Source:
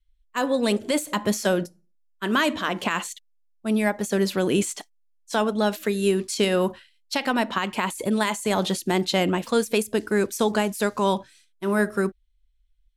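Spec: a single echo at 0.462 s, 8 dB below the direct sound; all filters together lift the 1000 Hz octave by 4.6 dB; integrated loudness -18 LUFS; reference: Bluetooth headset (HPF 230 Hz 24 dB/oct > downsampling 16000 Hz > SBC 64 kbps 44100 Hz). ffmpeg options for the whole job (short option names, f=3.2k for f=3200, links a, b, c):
-af "highpass=f=230:w=0.5412,highpass=f=230:w=1.3066,equalizer=f=1k:t=o:g=5.5,aecho=1:1:462:0.398,aresample=16000,aresample=44100,volume=5.5dB" -ar 44100 -c:a sbc -b:a 64k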